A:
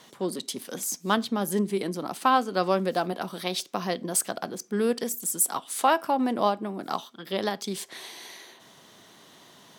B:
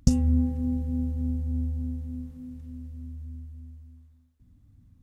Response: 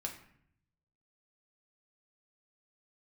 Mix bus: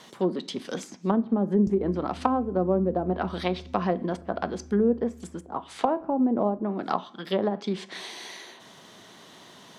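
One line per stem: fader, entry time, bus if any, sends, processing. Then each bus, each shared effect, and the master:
+2.0 dB, 0.00 s, send -10 dB, low-pass that closes with the level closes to 480 Hz, closed at -22 dBFS
-8.5 dB, 1.60 s, no send, compression 4:1, threshold -32 dBFS, peak gain reduction 16 dB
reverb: on, RT60 0.65 s, pre-delay 5 ms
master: peaking EQ 14 kHz -6 dB 1.2 oct

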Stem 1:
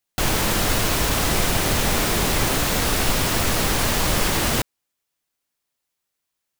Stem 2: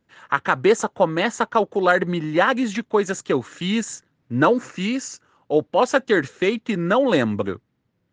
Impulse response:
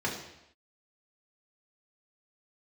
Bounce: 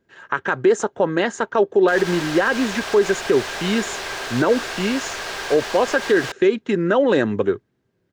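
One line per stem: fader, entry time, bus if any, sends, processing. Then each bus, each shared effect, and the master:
-5.0 dB, 1.70 s, no send, three-band isolator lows -18 dB, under 590 Hz, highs -18 dB, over 6.9 kHz
-0.5 dB, 0.00 s, no send, none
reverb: none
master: peaking EQ 650 Hz +3 dB 0.42 oct; small resonant body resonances 390/1600 Hz, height 11 dB, ringing for 40 ms; peak limiter -7.5 dBFS, peak gain reduction 9.5 dB

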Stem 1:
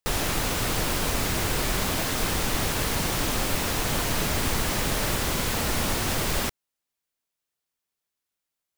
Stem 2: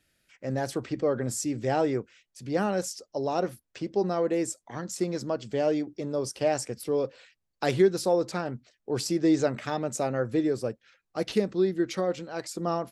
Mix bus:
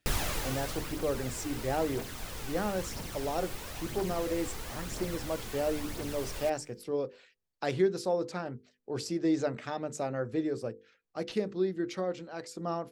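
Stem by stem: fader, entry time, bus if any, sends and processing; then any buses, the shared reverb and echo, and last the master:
+1.5 dB, 0.00 s, no send, feedback comb 300 Hz, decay 1.1 s, mix 50%; phaser 1 Hz, delay 2.8 ms, feedback 43%; auto duck -12 dB, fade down 0.95 s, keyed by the second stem
-5.0 dB, 0.00 s, no send, treble shelf 10 kHz -10.5 dB; hum notches 50/100/150/200/250/300/350/400/450/500 Hz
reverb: none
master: none

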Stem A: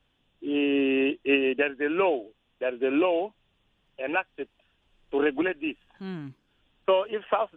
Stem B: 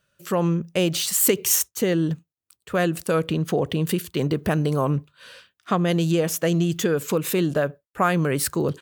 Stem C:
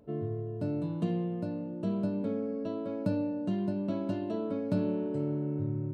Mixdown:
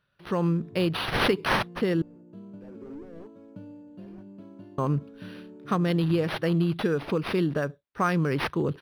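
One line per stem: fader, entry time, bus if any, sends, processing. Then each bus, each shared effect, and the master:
-8.5 dB, 0.00 s, no send, gate with hold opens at -59 dBFS; low-pass that closes with the level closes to 1.1 kHz, closed at -23 dBFS; slew-rate limiter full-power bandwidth 8.7 Hz; auto duck -21 dB, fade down 0.95 s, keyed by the second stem
-2.5 dB, 0.00 s, muted 2.02–4.78 s, no send, none
-12.5 dB, 0.50 s, no send, none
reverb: none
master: peaking EQ 640 Hz -6 dB 0.64 oct; decimation joined by straight lines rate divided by 6×

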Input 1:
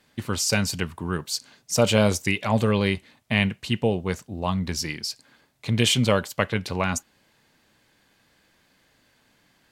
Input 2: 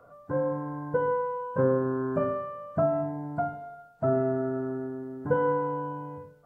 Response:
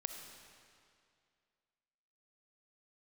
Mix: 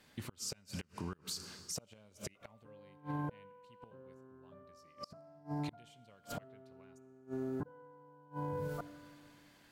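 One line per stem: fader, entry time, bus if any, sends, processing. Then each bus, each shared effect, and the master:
-5.5 dB, 0.00 s, send -4 dB, compression 1.5:1, threshold -36 dBFS, peak gain reduction 8.5 dB
-4.5 dB, 2.35 s, send -4.5 dB, treble shelf 2.3 kHz +4.5 dB; level flattener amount 50%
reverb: on, RT60 2.3 s, pre-delay 20 ms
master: inverted gate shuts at -20 dBFS, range -33 dB; peak limiter -31 dBFS, peak gain reduction 13.5 dB

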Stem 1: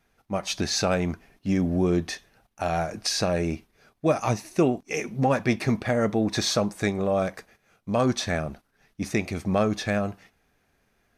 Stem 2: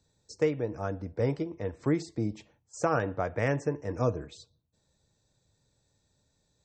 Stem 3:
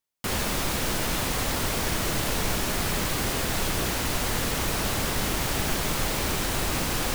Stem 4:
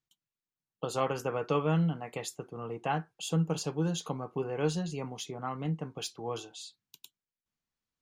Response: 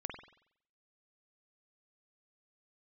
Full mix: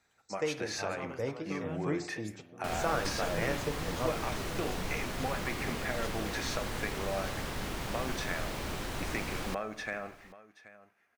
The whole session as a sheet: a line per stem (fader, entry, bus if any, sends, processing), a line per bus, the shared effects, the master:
-5.5 dB, 0.00 s, send -4.5 dB, echo send -14.5 dB, high-pass 910 Hz 6 dB/octave; resonant high shelf 2.8 kHz -7.5 dB, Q 1.5; compression 4:1, threshold -31 dBFS, peak gain reduction 8.5 dB
-4.5 dB, 0.00 s, send -6 dB, no echo send, bass shelf 470 Hz -9.5 dB
-9.0 dB, 2.40 s, no send, echo send -22 dB, treble shelf 5.7 kHz -10 dB
-13.5 dB, 0.00 s, no send, no echo send, none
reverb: on, pre-delay 46 ms
echo: delay 779 ms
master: none

